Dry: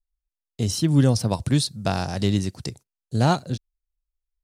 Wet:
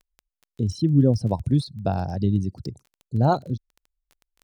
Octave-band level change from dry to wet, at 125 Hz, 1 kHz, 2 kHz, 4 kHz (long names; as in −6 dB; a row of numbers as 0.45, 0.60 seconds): 0.0, 0.0, −9.5, −11.0 decibels